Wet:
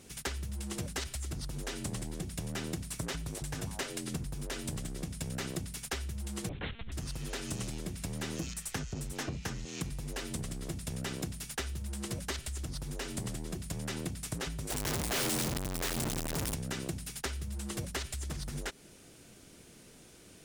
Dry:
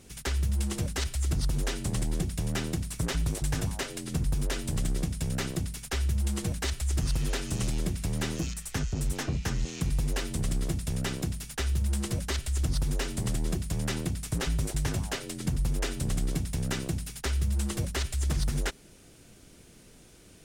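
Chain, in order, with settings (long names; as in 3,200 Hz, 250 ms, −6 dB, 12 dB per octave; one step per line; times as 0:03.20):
0:14.70–0:16.54: sign of each sample alone
downward compressor, threshold −31 dBFS, peak gain reduction 8.5 dB
0:06.49–0:06.92: one-pitch LPC vocoder at 8 kHz 230 Hz
low-shelf EQ 80 Hz −9.5 dB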